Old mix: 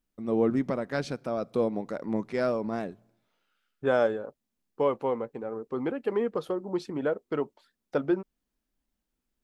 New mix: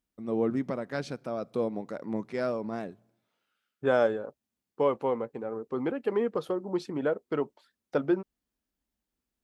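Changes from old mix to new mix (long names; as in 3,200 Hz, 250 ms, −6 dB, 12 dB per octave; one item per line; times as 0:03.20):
first voice −3.0 dB
master: add high-pass filter 50 Hz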